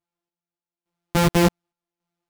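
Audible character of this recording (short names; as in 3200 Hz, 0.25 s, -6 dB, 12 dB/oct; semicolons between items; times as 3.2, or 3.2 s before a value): a buzz of ramps at a fixed pitch in blocks of 256 samples; random-step tremolo, depth 80%; a shimmering, thickened sound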